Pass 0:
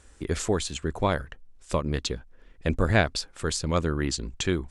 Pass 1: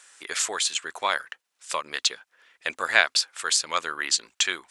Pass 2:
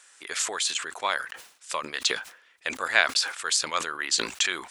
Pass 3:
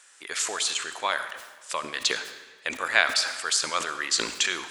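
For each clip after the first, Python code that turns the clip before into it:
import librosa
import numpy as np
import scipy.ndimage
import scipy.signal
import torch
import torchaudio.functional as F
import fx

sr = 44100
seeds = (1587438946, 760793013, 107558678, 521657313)

y1 = scipy.signal.sosfilt(scipy.signal.butter(2, 1300.0, 'highpass', fs=sr, output='sos'), x)
y1 = F.gain(torch.from_numpy(y1), 8.5).numpy()
y2 = fx.sustainer(y1, sr, db_per_s=110.0)
y2 = F.gain(torch.from_numpy(y2), -2.0).numpy()
y3 = fx.rev_freeverb(y2, sr, rt60_s=1.3, hf_ratio=0.9, predelay_ms=25, drr_db=10.0)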